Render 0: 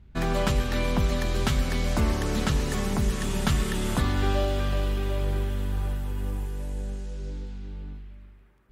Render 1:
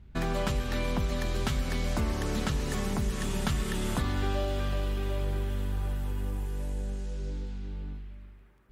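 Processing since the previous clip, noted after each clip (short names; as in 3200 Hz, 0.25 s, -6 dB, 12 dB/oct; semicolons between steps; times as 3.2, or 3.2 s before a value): compressor 2:1, threshold -29 dBFS, peak gain reduction 6 dB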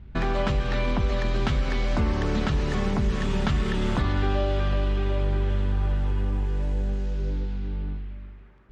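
de-hum 82.58 Hz, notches 9; in parallel at 0 dB: limiter -24.5 dBFS, peak gain reduction 8 dB; on the sum: air absorption 150 m; gain +1.5 dB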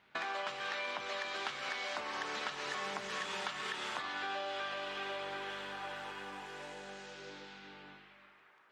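HPF 860 Hz 12 dB/oct; compressor, threshold -37 dBFS, peak gain reduction 9.5 dB; shoebox room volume 280 m³, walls furnished, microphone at 0.53 m; gain +1 dB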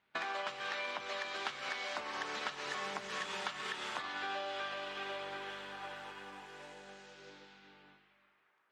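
upward expander 1.5:1, over -58 dBFS; gain +1 dB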